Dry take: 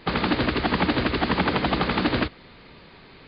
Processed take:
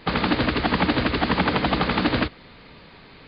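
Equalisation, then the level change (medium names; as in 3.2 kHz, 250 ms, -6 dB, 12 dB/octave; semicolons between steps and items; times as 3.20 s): band-stop 370 Hz, Q 12; +1.5 dB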